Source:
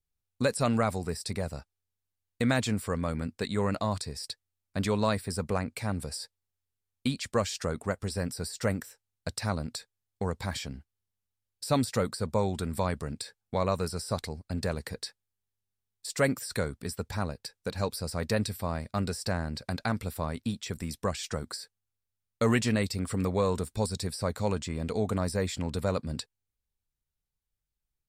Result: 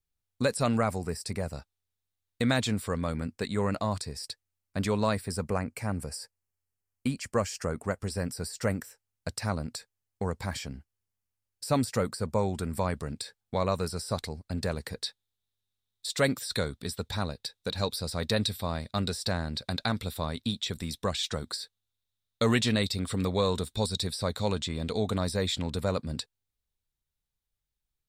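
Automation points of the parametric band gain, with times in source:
parametric band 3,700 Hz 0.37 octaves
+1.5 dB
from 0:00.77 −6.5 dB
from 0:01.53 +5 dB
from 0:03.17 −2 dB
from 0:05.49 −14 dB
from 0:07.82 −4.5 dB
from 0:12.94 +3 dB
from 0:15.04 +14 dB
from 0:25.70 +4.5 dB

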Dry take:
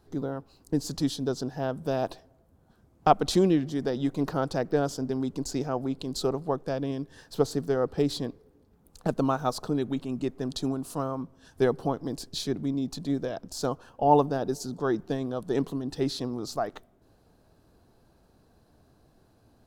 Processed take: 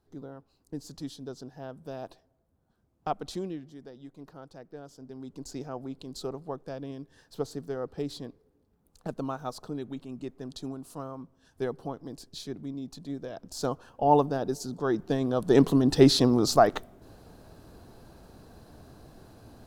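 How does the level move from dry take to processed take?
0:03.24 −11 dB
0:03.96 −19 dB
0:04.84 −19 dB
0:05.49 −8 dB
0:13.19 −8 dB
0:13.63 −1 dB
0:14.86 −1 dB
0:15.81 +10.5 dB

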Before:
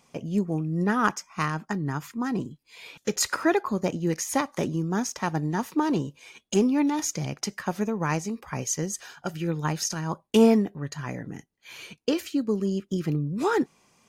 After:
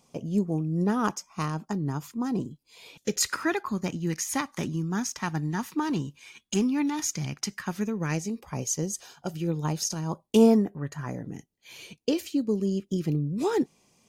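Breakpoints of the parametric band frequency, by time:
parametric band −10.5 dB 1.2 octaves
0:02.86 1,800 Hz
0:03.43 540 Hz
0:07.63 540 Hz
0:08.55 1,700 Hz
0:10.42 1,700 Hz
0:10.86 5,600 Hz
0:11.30 1,400 Hz

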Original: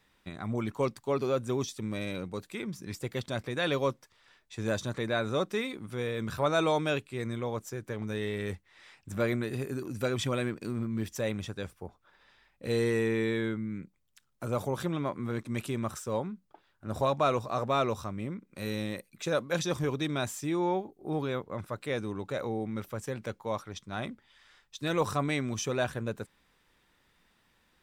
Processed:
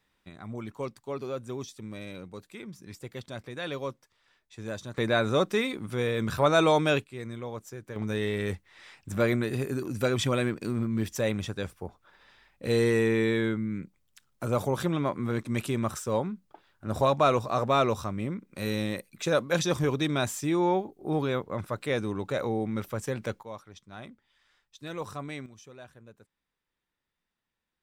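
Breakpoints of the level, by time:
−5.5 dB
from 0:04.98 +5 dB
from 0:07.04 −3.5 dB
from 0:07.96 +4 dB
from 0:23.43 −8 dB
from 0:25.46 −18 dB

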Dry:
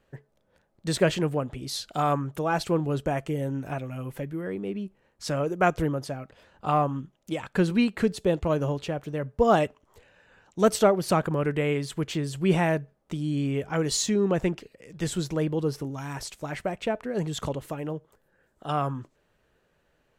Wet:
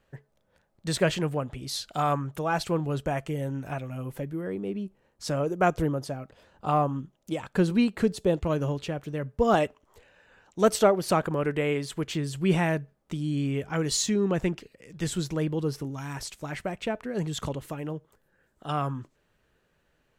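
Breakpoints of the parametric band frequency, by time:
parametric band −3.5 dB 1.5 octaves
340 Hz
from 0:03.90 2,100 Hz
from 0:08.38 700 Hz
from 0:09.54 130 Hz
from 0:12.06 600 Hz

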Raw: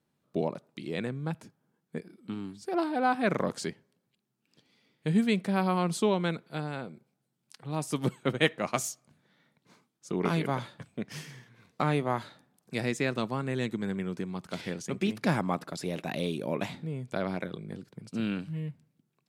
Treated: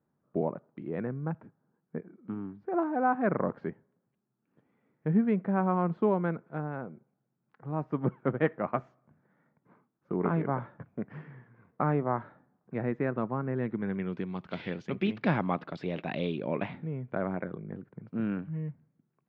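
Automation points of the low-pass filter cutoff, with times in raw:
low-pass filter 24 dB per octave
0:13.57 1,600 Hz
0:14.20 3,300 Hz
0:16.28 3,300 Hz
0:17.23 1,800 Hz

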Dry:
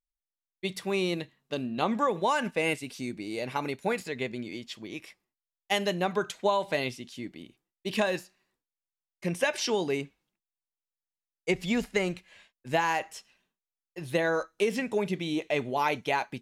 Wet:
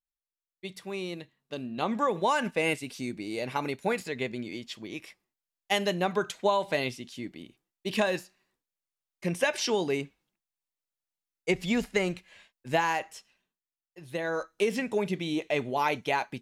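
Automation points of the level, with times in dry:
0:01.22 −7 dB
0:02.17 +0.5 dB
0:12.78 +0.5 dB
0:14.02 −9 dB
0:14.52 0 dB

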